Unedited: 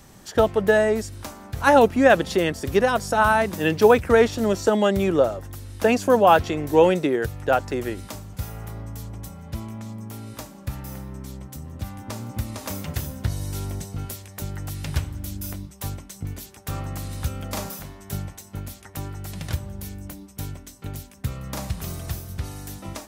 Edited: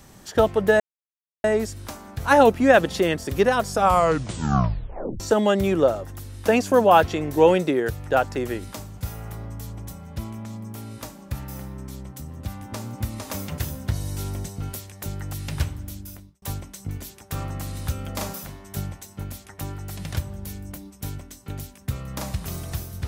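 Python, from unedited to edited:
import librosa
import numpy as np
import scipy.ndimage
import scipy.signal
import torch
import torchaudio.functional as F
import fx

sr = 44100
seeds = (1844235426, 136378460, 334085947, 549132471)

y = fx.edit(x, sr, fx.insert_silence(at_s=0.8, length_s=0.64),
    fx.tape_stop(start_s=3.05, length_s=1.51),
    fx.fade_out_span(start_s=15.04, length_s=0.74), tone=tone)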